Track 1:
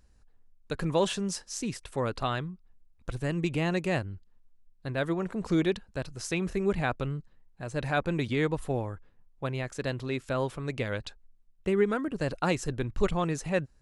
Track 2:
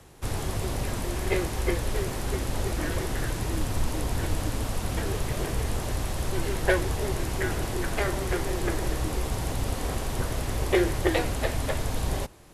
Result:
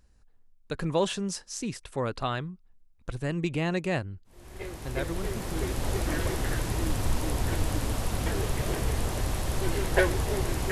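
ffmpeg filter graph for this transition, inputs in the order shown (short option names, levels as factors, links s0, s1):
-filter_complex "[0:a]apad=whole_dur=10.71,atrim=end=10.71,atrim=end=6,asetpts=PTS-STARTPTS[s0];[1:a]atrim=start=0.95:end=7.42,asetpts=PTS-STARTPTS[s1];[s0][s1]acrossfade=d=1.76:c1=tri:c2=tri"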